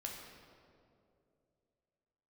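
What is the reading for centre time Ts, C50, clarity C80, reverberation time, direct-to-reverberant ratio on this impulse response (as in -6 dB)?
76 ms, 2.5 dB, 4.0 dB, 2.6 s, -1.0 dB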